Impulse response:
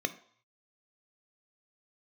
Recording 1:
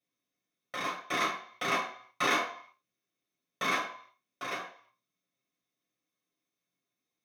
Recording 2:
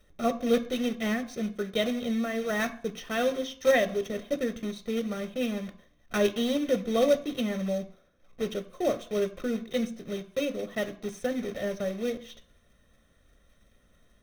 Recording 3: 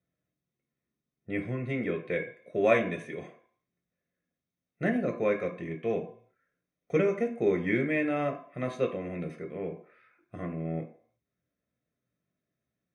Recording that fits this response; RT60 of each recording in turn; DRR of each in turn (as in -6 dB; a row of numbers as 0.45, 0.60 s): 2; 0.60, 0.60, 0.60 s; -7.5, 8.0, 2.5 dB